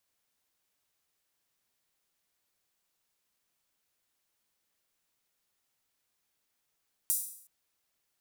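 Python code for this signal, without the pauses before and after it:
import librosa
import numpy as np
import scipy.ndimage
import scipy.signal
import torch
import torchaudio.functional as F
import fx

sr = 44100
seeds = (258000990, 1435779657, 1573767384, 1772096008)

y = fx.drum_hat_open(sr, length_s=0.37, from_hz=8800.0, decay_s=0.62)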